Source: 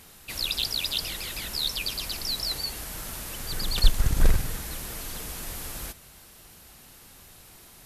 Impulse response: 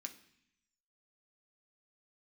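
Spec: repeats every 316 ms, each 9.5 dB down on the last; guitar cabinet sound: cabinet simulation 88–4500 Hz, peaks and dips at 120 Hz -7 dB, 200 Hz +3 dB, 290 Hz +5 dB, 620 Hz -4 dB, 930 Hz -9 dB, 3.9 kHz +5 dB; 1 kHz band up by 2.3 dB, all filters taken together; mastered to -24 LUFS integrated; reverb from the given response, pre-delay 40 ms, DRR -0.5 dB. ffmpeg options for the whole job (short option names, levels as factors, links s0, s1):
-filter_complex "[0:a]equalizer=f=1000:t=o:g=8,aecho=1:1:316|632|948|1264:0.335|0.111|0.0365|0.012,asplit=2[s0][s1];[1:a]atrim=start_sample=2205,adelay=40[s2];[s1][s2]afir=irnorm=-1:irlink=0,volume=1.68[s3];[s0][s3]amix=inputs=2:normalize=0,highpass=88,equalizer=f=120:t=q:w=4:g=-7,equalizer=f=200:t=q:w=4:g=3,equalizer=f=290:t=q:w=4:g=5,equalizer=f=620:t=q:w=4:g=-4,equalizer=f=930:t=q:w=4:g=-9,equalizer=f=3900:t=q:w=4:g=5,lowpass=f=4500:w=0.5412,lowpass=f=4500:w=1.3066,volume=1.26"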